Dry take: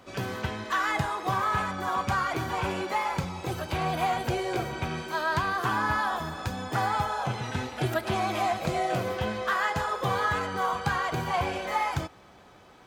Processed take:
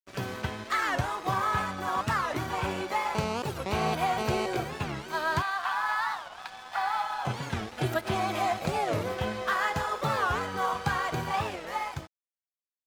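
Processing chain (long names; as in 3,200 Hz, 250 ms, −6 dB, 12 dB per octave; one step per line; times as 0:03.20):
fade-out on the ending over 1.64 s
0:05.42–0:07.25: elliptic band-pass filter 730–4,500 Hz
dead-zone distortion −44 dBFS
0:03.15–0:04.46: phone interference −32 dBFS
wow of a warped record 45 rpm, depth 250 cents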